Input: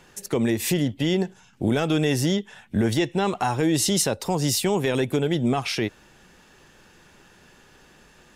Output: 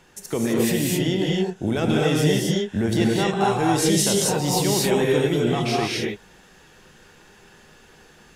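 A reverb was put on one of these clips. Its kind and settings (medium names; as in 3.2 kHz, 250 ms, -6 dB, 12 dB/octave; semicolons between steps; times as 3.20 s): gated-style reverb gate 290 ms rising, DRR -3 dB; trim -2 dB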